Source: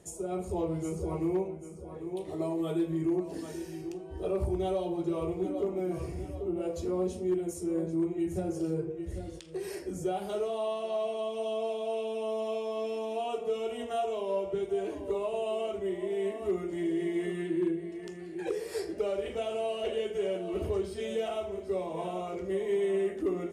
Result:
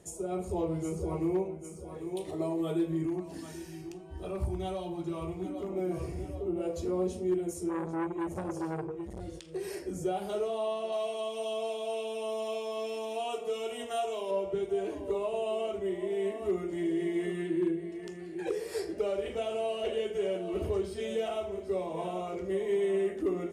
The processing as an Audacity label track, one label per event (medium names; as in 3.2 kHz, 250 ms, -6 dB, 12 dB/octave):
1.640000	2.310000	treble shelf 2.5 kHz +8 dB
3.060000	5.700000	peaking EQ 460 Hz -10.5 dB
7.690000	9.210000	transformer saturation saturates under 690 Hz
10.920000	14.310000	tilt EQ +2 dB/octave